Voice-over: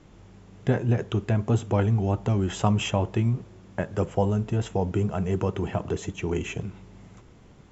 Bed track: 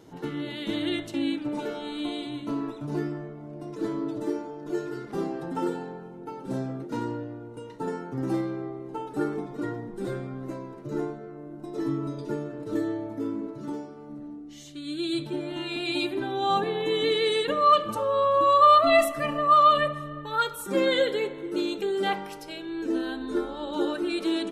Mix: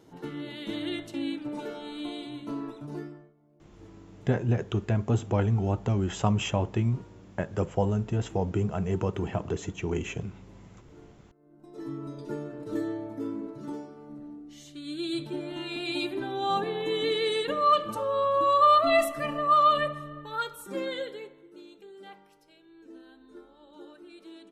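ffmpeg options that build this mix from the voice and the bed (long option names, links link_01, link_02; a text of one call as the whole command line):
ffmpeg -i stem1.wav -i stem2.wav -filter_complex "[0:a]adelay=3600,volume=-2.5dB[link_01];[1:a]volume=15.5dB,afade=type=out:start_time=2.76:duration=0.57:silence=0.11885,afade=type=in:start_time=11.38:duration=1.08:silence=0.1,afade=type=out:start_time=19.84:duration=1.68:silence=0.125893[link_02];[link_01][link_02]amix=inputs=2:normalize=0" out.wav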